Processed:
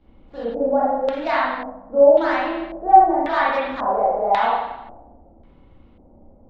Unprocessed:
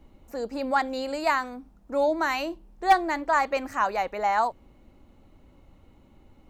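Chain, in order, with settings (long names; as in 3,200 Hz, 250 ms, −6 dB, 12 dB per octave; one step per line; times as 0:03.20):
running median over 15 samples
spring reverb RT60 1 s, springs 30/39/43 ms, chirp 65 ms, DRR −8.5 dB
auto-filter low-pass square 0.92 Hz 650–3,600 Hz
level −4.5 dB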